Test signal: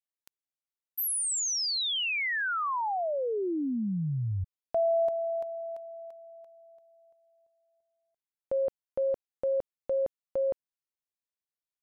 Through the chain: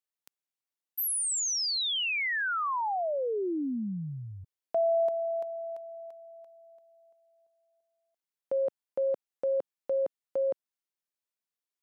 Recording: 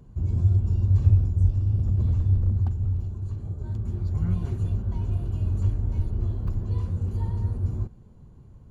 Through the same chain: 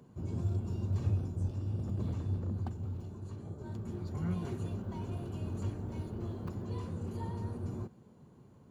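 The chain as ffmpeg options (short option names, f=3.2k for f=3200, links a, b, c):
-af "highpass=200"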